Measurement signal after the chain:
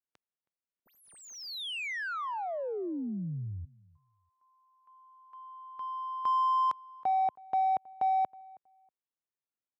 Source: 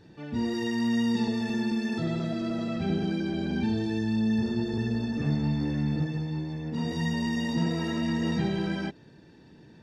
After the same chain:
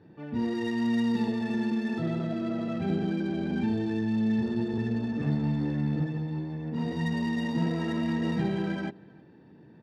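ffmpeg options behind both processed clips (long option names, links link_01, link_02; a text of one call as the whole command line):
ffmpeg -i in.wav -filter_complex "[0:a]highpass=100,adynamicsmooth=sensitivity=5:basefreq=2100,asplit=2[link_01][link_02];[link_02]adelay=320,lowpass=frequency=2200:poles=1,volume=-23dB,asplit=2[link_03][link_04];[link_04]adelay=320,lowpass=frequency=2200:poles=1,volume=0.21[link_05];[link_01][link_03][link_05]amix=inputs=3:normalize=0" out.wav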